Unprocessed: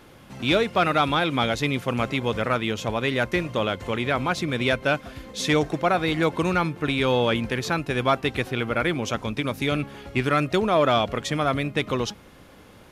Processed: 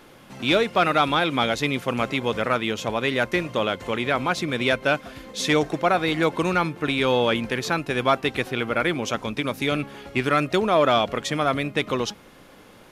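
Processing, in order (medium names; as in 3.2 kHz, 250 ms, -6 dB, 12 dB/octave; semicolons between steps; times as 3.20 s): peaking EQ 69 Hz -9 dB 1.9 oct; trim +1.5 dB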